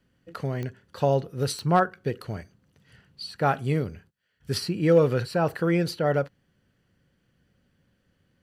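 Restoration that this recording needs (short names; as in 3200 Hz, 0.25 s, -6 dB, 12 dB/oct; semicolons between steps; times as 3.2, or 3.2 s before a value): clip repair -9 dBFS; de-click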